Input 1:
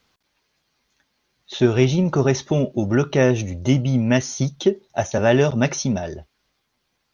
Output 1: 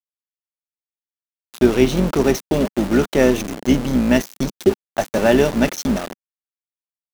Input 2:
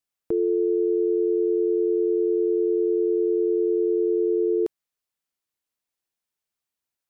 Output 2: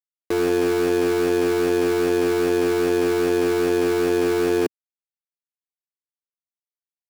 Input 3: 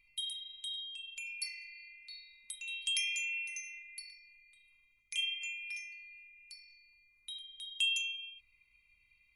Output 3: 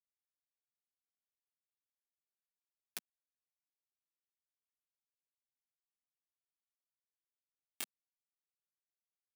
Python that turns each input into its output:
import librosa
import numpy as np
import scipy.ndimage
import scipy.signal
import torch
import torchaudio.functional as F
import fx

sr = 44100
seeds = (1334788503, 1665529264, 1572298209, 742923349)

y = fx.octave_divider(x, sr, octaves=2, level_db=1.0)
y = np.where(np.abs(y) >= 10.0 ** (-23.0 / 20.0), y, 0.0)
y = fx.low_shelf_res(y, sr, hz=160.0, db=-10.0, q=1.5)
y = F.gain(torch.from_numpy(y), 1.0).numpy()